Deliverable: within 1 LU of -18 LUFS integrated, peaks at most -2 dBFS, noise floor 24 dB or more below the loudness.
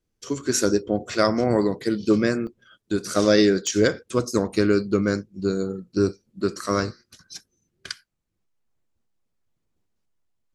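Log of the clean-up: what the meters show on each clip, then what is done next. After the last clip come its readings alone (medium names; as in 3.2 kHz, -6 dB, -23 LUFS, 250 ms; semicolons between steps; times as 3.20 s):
dropouts 2; longest dropout 1.9 ms; loudness -23.0 LUFS; peak level -4.5 dBFS; loudness target -18.0 LUFS
-> interpolate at 2.47/3.67 s, 1.9 ms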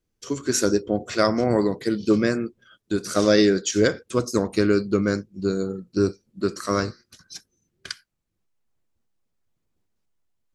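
dropouts 0; loudness -23.0 LUFS; peak level -4.5 dBFS; loudness target -18.0 LUFS
-> trim +5 dB; peak limiter -2 dBFS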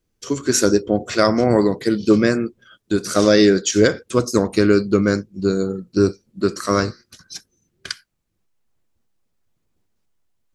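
loudness -18.0 LUFS; peak level -2.0 dBFS; noise floor -72 dBFS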